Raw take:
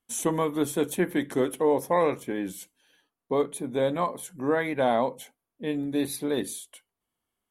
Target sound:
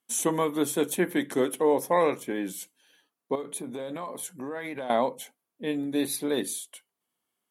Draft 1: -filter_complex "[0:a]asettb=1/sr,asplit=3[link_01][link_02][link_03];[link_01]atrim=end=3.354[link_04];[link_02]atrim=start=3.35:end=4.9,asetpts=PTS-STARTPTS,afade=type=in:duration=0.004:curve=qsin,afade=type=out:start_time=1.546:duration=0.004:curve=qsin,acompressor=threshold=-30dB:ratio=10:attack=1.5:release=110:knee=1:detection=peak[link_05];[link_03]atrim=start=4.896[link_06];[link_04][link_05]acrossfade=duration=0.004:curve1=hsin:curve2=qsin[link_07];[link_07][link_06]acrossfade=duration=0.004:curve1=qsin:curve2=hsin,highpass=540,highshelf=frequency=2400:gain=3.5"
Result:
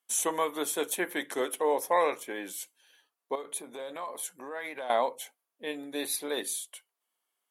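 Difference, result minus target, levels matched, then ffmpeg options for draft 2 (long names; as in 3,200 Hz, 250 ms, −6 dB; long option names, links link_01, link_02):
125 Hz band −14.5 dB
-filter_complex "[0:a]asettb=1/sr,asplit=3[link_01][link_02][link_03];[link_01]atrim=end=3.354[link_04];[link_02]atrim=start=3.35:end=4.9,asetpts=PTS-STARTPTS,afade=type=in:duration=0.004:curve=qsin,afade=type=out:start_time=1.546:duration=0.004:curve=qsin,acompressor=threshold=-30dB:ratio=10:attack=1.5:release=110:knee=1:detection=peak[link_05];[link_03]atrim=start=4.896[link_06];[link_04][link_05]acrossfade=duration=0.004:curve1=hsin:curve2=qsin[link_07];[link_07][link_06]acrossfade=duration=0.004:curve1=qsin:curve2=hsin,highpass=160,highshelf=frequency=2400:gain=3.5"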